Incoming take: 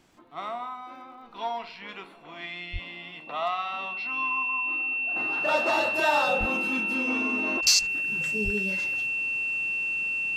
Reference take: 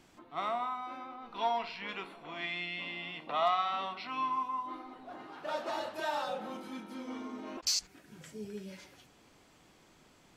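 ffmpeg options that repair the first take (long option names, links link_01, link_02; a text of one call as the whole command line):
ffmpeg -i in.wav -filter_complex "[0:a]adeclick=threshold=4,bandreject=frequency=2700:width=30,asplit=3[link_01][link_02][link_03];[link_01]afade=type=out:start_time=2.72:duration=0.02[link_04];[link_02]highpass=frequency=140:width=0.5412,highpass=frequency=140:width=1.3066,afade=type=in:start_time=2.72:duration=0.02,afade=type=out:start_time=2.84:duration=0.02[link_05];[link_03]afade=type=in:start_time=2.84:duration=0.02[link_06];[link_04][link_05][link_06]amix=inputs=3:normalize=0,asplit=3[link_07][link_08][link_09];[link_07]afade=type=out:start_time=6.39:duration=0.02[link_10];[link_08]highpass=frequency=140:width=0.5412,highpass=frequency=140:width=1.3066,afade=type=in:start_time=6.39:duration=0.02,afade=type=out:start_time=6.51:duration=0.02[link_11];[link_09]afade=type=in:start_time=6.51:duration=0.02[link_12];[link_10][link_11][link_12]amix=inputs=3:normalize=0,asplit=3[link_13][link_14][link_15];[link_13]afade=type=out:start_time=8.44:duration=0.02[link_16];[link_14]highpass=frequency=140:width=0.5412,highpass=frequency=140:width=1.3066,afade=type=in:start_time=8.44:duration=0.02,afade=type=out:start_time=8.56:duration=0.02[link_17];[link_15]afade=type=in:start_time=8.56:duration=0.02[link_18];[link_16][link_17][link_18]amix=inputs=3:normalize=0,asetnsamples=nb_out_samples=441:pad=0,asendcmd='5.16 volume volume -10.5dB',volume=0dB" out.wav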